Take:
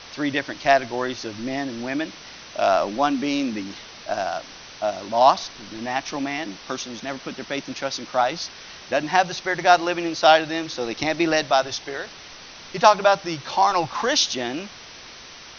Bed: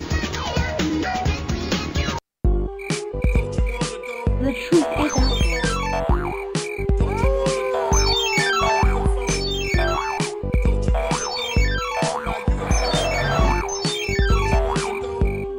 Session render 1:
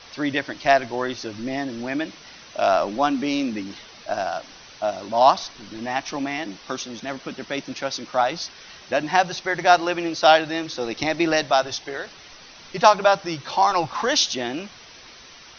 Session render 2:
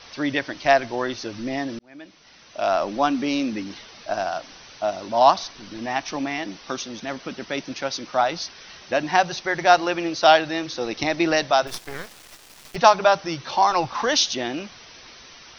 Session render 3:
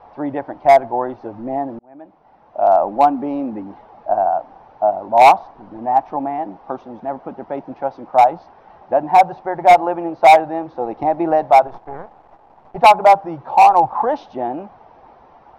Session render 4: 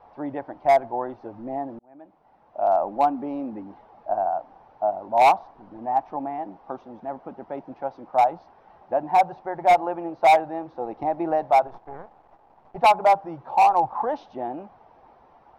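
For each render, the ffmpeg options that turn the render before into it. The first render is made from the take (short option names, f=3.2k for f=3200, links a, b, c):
-af "afftdn=nr=6:nf=-42"
-filter_complex "[0:a]asettb=1/sr,asplit=3[a][b][c];[a]atrim=end=11.674[d];[b]atrim=start=11.67:end=12.76,asetpts=PTS-STARTPTS,afade=t=in:d=0.004:c=qsin,afade=t=out:st=1.086:d=0.004:c=qsin,acrusher=bits=4:dc=4:mix=0:aa=0.000001[e];[c]atrim=start=12.756[f];[d][e]acrossfade=d=0.004:c1=hsin:c2=qsin[g];[g][f]acrossfade=d=0.004:c1=qsin:c2=hsin,asplit=2[h][i];[h]atrim=end=1.79,asetpts=PTS-STARTPTS,afade=t=out:st=1.786:d=0.004:c=hsin[j];[i]atrim=start=1.79,asetpts=PTS-STARTPTS,afade=t=in:d=1.23[k];[j][k]concat=n=2:v=0:a=1"
-af "lowpass=f=820:t=q:w=4.9,asoftclip=type=hard:threshold=-4dB"
-af "volume=-7.5dB"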